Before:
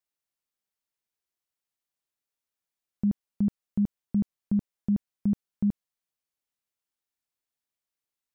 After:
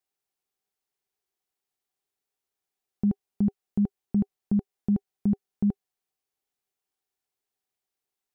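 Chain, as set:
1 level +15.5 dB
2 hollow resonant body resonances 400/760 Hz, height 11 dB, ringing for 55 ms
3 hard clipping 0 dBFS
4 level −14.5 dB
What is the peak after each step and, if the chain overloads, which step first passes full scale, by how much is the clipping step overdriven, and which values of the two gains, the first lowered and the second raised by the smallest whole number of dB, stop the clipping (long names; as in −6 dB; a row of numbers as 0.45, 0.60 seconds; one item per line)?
−4.0, −2.5, −2.5, −17.0 dBFS
no step passes full scale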